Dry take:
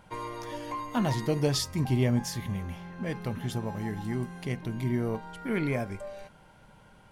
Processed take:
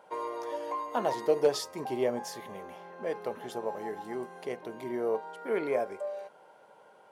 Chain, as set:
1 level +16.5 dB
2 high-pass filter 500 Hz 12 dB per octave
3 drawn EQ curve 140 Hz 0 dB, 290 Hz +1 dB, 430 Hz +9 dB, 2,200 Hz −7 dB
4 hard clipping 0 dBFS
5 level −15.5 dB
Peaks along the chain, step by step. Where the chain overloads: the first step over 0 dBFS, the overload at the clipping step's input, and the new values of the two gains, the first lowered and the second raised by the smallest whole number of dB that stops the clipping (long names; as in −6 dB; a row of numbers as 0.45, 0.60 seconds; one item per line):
+3.0, −0.5, +3.5, 0.0, −15.5 dBFS
step 1, 3.5 dB
step 1 +12.5 dB, step 5 −11.5 dB